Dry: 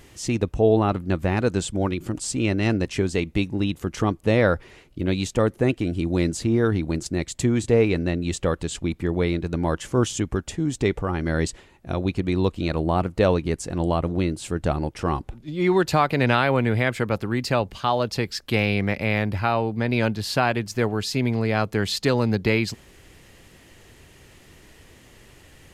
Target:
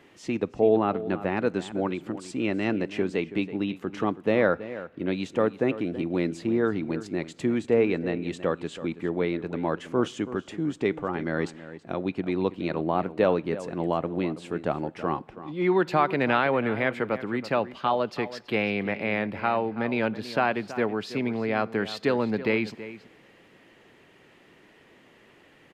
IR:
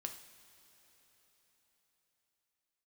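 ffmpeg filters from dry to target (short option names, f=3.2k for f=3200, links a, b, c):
-filter_complex "[0:a]acrossover=split=160 3400:gain=0.0708 1 0.158[a][b][c];[a][b][c]amix=inputs=3:normalize=0,asplit=2[d][e];[e]adelay=326.5,volume=-14dB,highshelf=f=4k:g=-7.35[f];[d][f]amix=inputs=2:normalize=0,asplit=2[g][h];[1:a]atrim=start_sample=2205,asetrate=52920,aresample=44100[i];[h][i]afir=irnorm=-1:irlink=0,volume=-11dB[j];[g][j]amix=inputs=2:normalize=0,volume=-3.5dB"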